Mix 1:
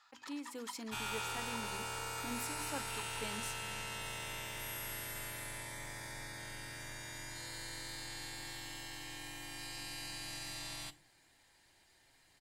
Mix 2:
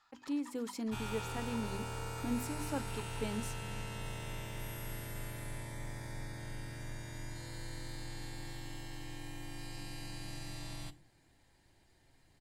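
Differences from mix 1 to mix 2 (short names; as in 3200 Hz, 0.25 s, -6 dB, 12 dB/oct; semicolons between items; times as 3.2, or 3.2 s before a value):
speech +4.0 dB; second sound: add low shelf 190 Hz +4 dB; master: add tilt shelf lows +6 dB, about 660 Hz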